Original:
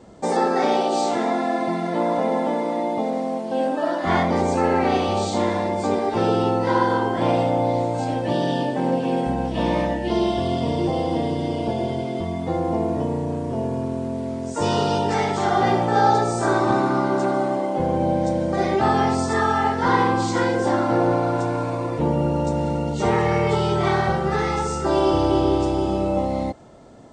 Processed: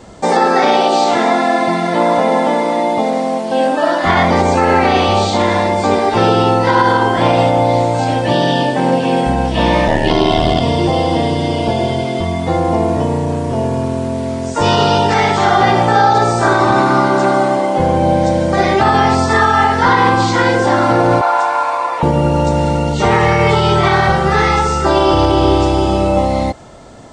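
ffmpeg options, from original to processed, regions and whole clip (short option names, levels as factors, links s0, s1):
-filter_complex "[0:a]asettb=1/sr,asplit=3[s0][s1][s2];[s0]atrim=end=9.874[s3];[s1]atrim=start=9.87:end=10.6,asetpts=PTS-STARTPTS,afade=t=in:d=0.004:c=qsin,afade=t=out:st=0.726:d=0.004:c=qsin,acontrast=38,aeval=exprs='val(0)*sin(2*PI*38*n/s)':c=same[s4];[s2]atrim=start=10.596[s5];[s3][s4]acrossfade=d=0.004:c1=hsin:c2=qsin[s6];[s6][s5]acrossfade=d=0.004:c1=qsin:c2=hsin,asettb=1/sr,asplit=3[s7][s8][s9];[s7]atrim=end=21.214[s10];[s8]atrim=start=21.21:end=22.03,asetpts=PTS-STARTPTS,afade=t=in:d=0.004:c=qsin,afade=t=out:st=0.816:d=0.004:c=qsin,highpass=f=890:t=q:w=1.9,highshelf=f=4200:g=-6.5[s11];[s9]atrim=start=22.026[s12];[s10][s11]acrossfade=d=0.004:c1=hsin:c2=qsin[s13];[s13][s12]acrossfade=d=0.004:c1=qsin:c2=hsin,acrossover=split=4900[s14][s15];[s15]acompressor=threshold=0.00355:ratio=4:attack=1:release=60[s16];[s14][s16]amix=inputs=2:normalize=0,equalizer=f=290:t=o:w=3:g=-7.5,alimiter=level_in=5.62:limit=0.891:release=50:level=0:latency=1,volume=0.891"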